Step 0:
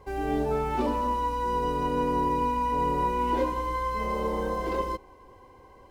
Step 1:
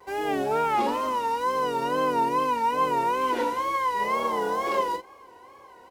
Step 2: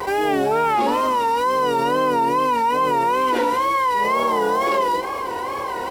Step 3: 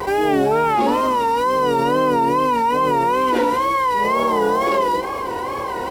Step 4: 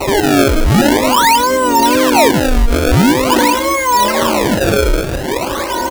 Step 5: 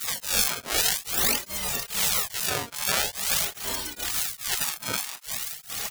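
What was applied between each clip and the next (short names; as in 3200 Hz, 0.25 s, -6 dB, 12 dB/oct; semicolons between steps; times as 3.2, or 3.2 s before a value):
on a send: early reflections 26 ms -10.5 dB, 41 ms -8.5 dB; on the sum: wow and flutter 110 cents; HPF 770 Hz 6 dB/oct; gain +6 dB
notch 6500 Hz, Q 16; fast leveller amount 70%; gain +3 dB
low shelf 370 Hz +6.5 dB
comb 3.3 ms, depth 93%; in parallel at -1 dB: limiter -10.5 dBFS, peak gain reduction 7 dB; on the sum: decimation with a swept rate 26×, swing 160% 0.46 Hz
high shelf 3200 Hz +7.5 dB; spectral gate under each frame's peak -20 dB weak; beating tremolo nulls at 2.4 Hz; gain -5 dB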